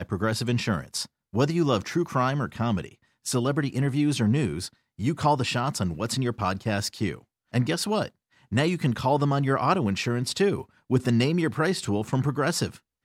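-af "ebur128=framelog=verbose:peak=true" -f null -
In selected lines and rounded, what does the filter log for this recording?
Integrated loudness:
  I:         -26.1 LUFS
  Threshold: -36.3 LUFS
Loudness range:
  LRA:         2.9 LU
  Threshold: -46.2 LUFS
  LRA low:   -27.6 LUFS
  LRA high:  -24.8 LUFS
True peak:
  Peak:       -8.7 dBFS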